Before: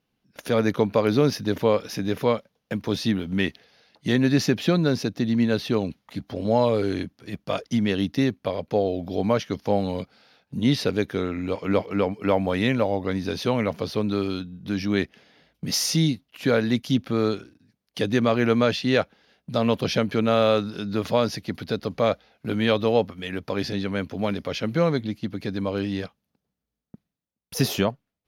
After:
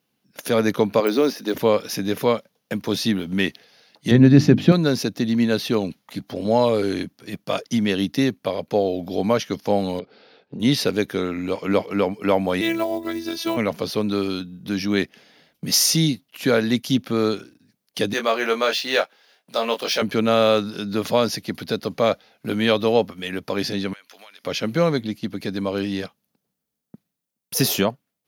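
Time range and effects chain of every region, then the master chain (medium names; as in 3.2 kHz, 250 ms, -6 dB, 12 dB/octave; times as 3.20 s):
1.00–1.54 s: de-esser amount 90% + high-pass 240 Hz 24 dB/octave
4.11–4.72 s: RIAA curve playback + hum notches 50/100/150/200/250/300/350 Hz
9.99–10.60 s: low-pass 4.4 kHz 24 dB/octave + peaking EQ 410 Hz +13.5 dB 0.86 oct + compression 10:1, threshold -30 dBFS
12.61–13.57 s: block-companded coder 7-bit + robot voice 332 Hz
18.13–20.02 s: median filter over 3 samples + high-pass 520 Hz + doubling 22 ms -6 dB
23.93–24.44 s: high-pass 1.4 kHz + compression 10:1, threshold -44 dBFS
whole clip: high-pass 130 Hz 12 dB/octave; treble shelf 6.5 kHz +10 dB; trim +2.5 dB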